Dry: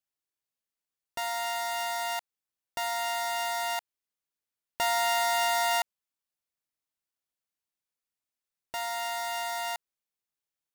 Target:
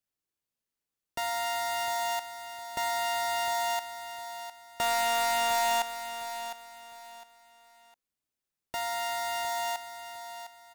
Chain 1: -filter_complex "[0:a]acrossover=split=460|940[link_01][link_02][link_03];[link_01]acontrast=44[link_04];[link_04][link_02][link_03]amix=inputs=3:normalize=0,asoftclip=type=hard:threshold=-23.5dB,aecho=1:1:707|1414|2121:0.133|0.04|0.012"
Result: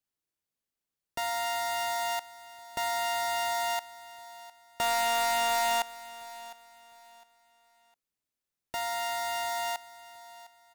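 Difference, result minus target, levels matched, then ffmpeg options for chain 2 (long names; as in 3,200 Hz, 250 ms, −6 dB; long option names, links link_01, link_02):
echo-to-direct −7 dB
-filter_complex "[0:a]acrossover=split=460|940[link_01][link_02][link_03];[link_01]acontrast=44[link_04];[link_04][link_02][link_03]amix=inputs=3:normalize=0,asoftclip=type=hard:threshold=-23.5dB,aecho=1:1:707|1414|2121:0.299|0.0896|0.0269"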